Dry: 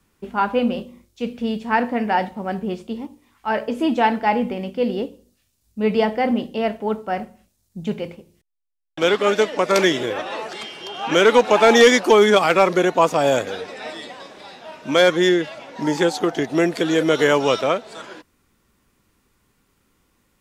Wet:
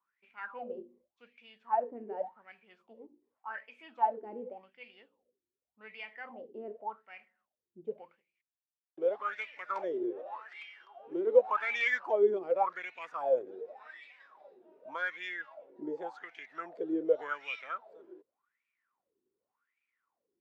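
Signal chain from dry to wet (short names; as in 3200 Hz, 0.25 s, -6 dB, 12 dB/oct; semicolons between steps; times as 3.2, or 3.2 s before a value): 10.85–11.27 tube stage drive 8 dB, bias 0.8; wah 0.87 Hz 350–2400 Hz, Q 13; gain -2.5 dB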